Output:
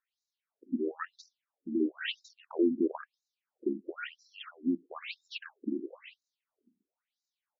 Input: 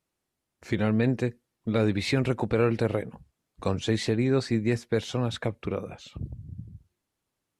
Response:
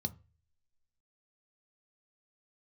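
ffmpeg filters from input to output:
-af "asetrate=32097,aresample=44100,atempo=1.37395,afftfilt=real='re*between(b*sr/1024,250*pow(5300/250,0.5+0.5*sin(2*PI*1*pts/sr))/1.41,250*pow(5300/250,0.5+0.5*sin(2*PI*1*pts/sr))*1.41)':imag='im*between(b*sr/1024,250*pow(5300/250,0.5+0.5*sin(2*PI*1*pts/sr))/1.41,250*pow(5300/250,0.5+0.5*sin(2*PI*1*pts/sr))*1.41)':win_size=1024:overlap=0.75"

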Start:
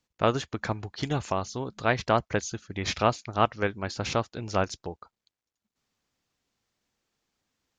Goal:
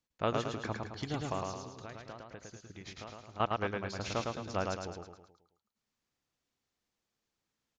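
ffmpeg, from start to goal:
-filter_complex "[0:a]asettb=1/sr,asplit=3[a][b][c];[a]atrim=end=1.504[d];[b]atrim=start=1.5:end=3.4,asetpts=PTS-STARTPTS,afade=t=in:d=0.004:c=qsin,afade=t=out:st=1.896:d=0.004:c=qsin,acompressor=threshold=-38dB:ratio=5[e];[c]atrim=start=3.396[f];[d][e]acrossfade=d=0.004:c1=hsin:c2=qsin[g];[g][f]acrossfade=d=0.004:c1=qsin:c2=hsin,aecho=1:1:108|216|324|432|540|648:0.708|0.333|0.156|0.0735|0.0345|0.0162,volume=-8.5dB"

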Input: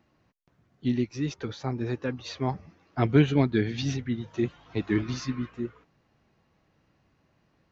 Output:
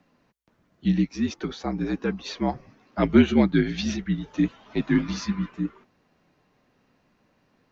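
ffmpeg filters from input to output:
-af "lowshelf=f=180:t=q:w=1.5:g=-9.5,afreqshift=-58,volume=3.5dB"

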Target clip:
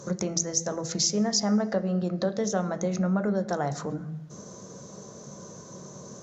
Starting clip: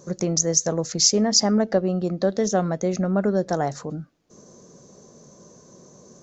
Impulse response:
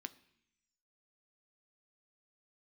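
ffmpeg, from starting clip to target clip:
-filter_complex "[0:a]acompressor=threshold=-34dB:ratio=2.5[a];[1:a]atrim=start_sample=2205,asetrate=26019,aresample=44100[b];[a][b]afir=irnorm=-1:irlink=0,volume=7.5dB"

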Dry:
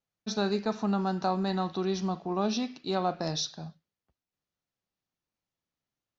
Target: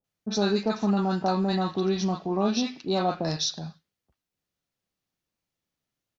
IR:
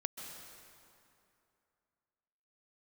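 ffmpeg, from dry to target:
-filter_complex "[0:a]acrossover=split=1000[a][b];[b]adelay=40[c];[a][c]amix=inputs=2:normalize=0,volume=4.5dB"

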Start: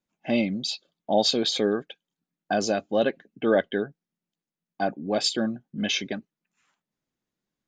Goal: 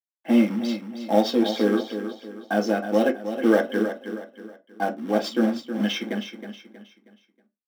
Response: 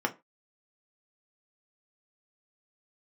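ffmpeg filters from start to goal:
-filter_complex "[0:a]aeval=exprs='sgn(val(0))*max(abs(val(0))-0.002,0)':c=same,acrusher=bits=3:mode=log:mix=0:aa=0.000001,lowshelf=f=170:t=q:w=1.5:g=-12.5,aecho=1:1:318|636|954|1272:0.335|0.127|0.0484|0.0184[a];[1:a]atrim=start_sample=2205[b];[a][b]afir=irnorm=-1:irlink=0,volume=-8dB"

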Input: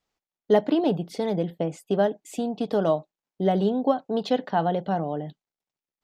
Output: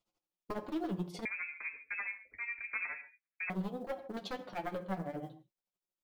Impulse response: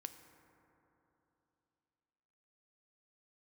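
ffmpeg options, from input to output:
-filter_complex "[0:a]equalizer=f=1.8k:t=o:w=0.28:g=-11.5,bandreject=f=1.6k:w=24,aecho=1:1:5.6:0.32,acompressor=threshold=-27dB:ratio=4,acrusher=bits=8:mode=log:mix=0:aa=0.000001,aeval=exprs='0.0531*(abs(mod(val(0)/0.0531+3,4)-2)-1)':c=same,tremolo=f=12:d=0.88,asoftclip=type=tanh:threshold=-27.5dB,flanger=delay=8.7:depth=2.3:regen=27:speed=1.5:shape=triangular[a];[1:a]atrim=start_sample=2205,afade=t=out:st=0.22:d=0.01,atrim=end_sample=10143,asetrate=48510,aresample=44100[b];[a][b]afir=irnorm=-1:irlink=0,asettb=1/sr,asplit=3[c][d][e];[c]atrim=end=1.254[f];[d]atrim=start=1.25:end=3.5,asetpts=PTS-STARTPTS,afade=t=in:d=0.004:c=qsin,afade=t=out:st=2.246:d=0.004:c=qsin,lowpass=f=2.2k:t=q:w=0.5098,lowpass=f=2.2k:t=q:w=0.6013,lowpass=f=2.2k:t=q:w=0.9,lowpass=f=2.2k:t=q:w=2.563,afreqshift=-2600[g];[e]atrim=start=3.496[h];[f][g]acrossfade=d=0.004:c1=hsin:c2=qsin[i];[i][h]acrossfade=d=0.004:c1=qsin:c2=hsin,volume=7dB"

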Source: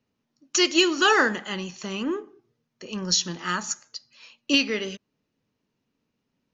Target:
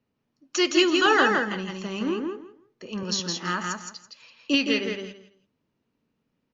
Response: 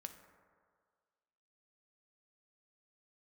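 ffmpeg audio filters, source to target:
-filter_complex "[0:a]lowpass=f=2.8k:p=1,asettb=1/sr,asplit=3[a][b][c];[a]atrim=end=1.064[d];[b]atrim=start=1.06:end=1.55,asetpts=PTS-STARTPTS,afade=t=in:d=0.004:c=qsin,afade=t=out:st=0.486:d=0.004:c=qsin,agate=range=-11dB:threshold=-32dB:ratio=16:detection=peak[e];[c]atrim=start=1.546[f];[d][e]acrossfade=d=0.004:c1=hsin:c2=qsin[g];[g][f]acrossfade=d=0.004:c1=qsin:c2=hsin,asettb=1/sr,asplit=3[h][i][j];[h]atrim=end=3.034[k];[i]atrim=start=3.03:end=3.43,asetpts=PTS-STARTPTS,afade=t=in:d=0.004:c=qsin,afade=t=out:st=0.396:d=0.004:c=qsin,highpass=190[l];[j]atrim=start=3.426[m];[k][l]acrossfade=d=0.004:c1=hsin:c2=qsin[n];[n][m]acrossfade=d=0.004:c1=qsin:c2=hsin,aecho=1:1:165|330|495:0.668|0.134|0.0267"

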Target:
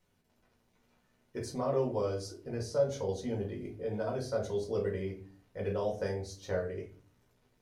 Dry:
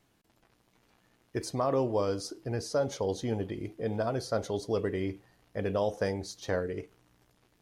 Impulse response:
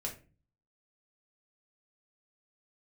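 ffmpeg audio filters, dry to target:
-filter_complex "[1:a]atrim=start_sample=2205[a];[0:a][a]afir=irnorm=-1:irlink=0,volume=-5dB"

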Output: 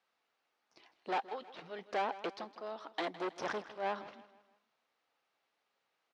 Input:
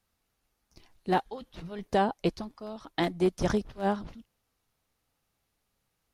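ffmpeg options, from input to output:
-filter_complex "[0:a]aeval=exprs='(tanh(35.5*val(0)+0.3)-tanh(0.3))/35.5':c=same,highpass=500,lowpass=3.6k,asplit=2[a][b];[b]aecho=0:1:160|320|480|640:0.158|0.0666|0.028|0.0117[c];[a][c]amix=inputs=2:normalize=0,volume=2.5dB"

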